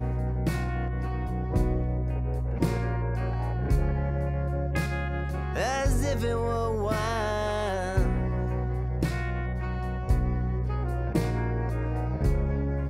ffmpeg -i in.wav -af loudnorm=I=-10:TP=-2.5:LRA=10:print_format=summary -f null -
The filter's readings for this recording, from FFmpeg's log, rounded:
Input Integrated:    -28.9 LUFS
Input True Peak:     -11.1 dBTP
Input LRA:             0.9 LU
Input Threshold:     -38.9 LUFS